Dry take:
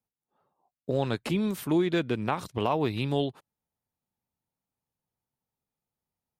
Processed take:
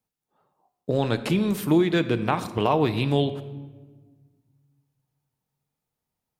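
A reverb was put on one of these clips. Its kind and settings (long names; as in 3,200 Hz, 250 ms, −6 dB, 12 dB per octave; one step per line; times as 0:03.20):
rectangular room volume 1,200 cubic metres, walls mixed, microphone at 0.51 metres
level +4.5 dB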